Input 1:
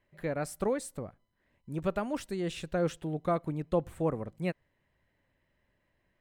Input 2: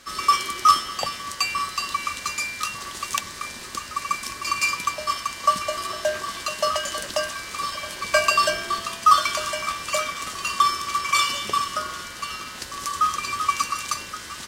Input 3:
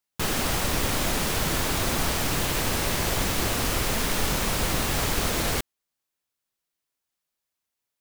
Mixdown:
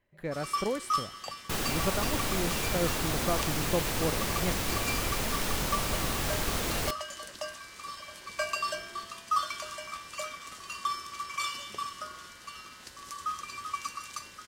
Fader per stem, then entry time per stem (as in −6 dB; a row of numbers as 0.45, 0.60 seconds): −1.5, −13.0, −5.5 decibels; 0.00, 0.25, 1.30 seconds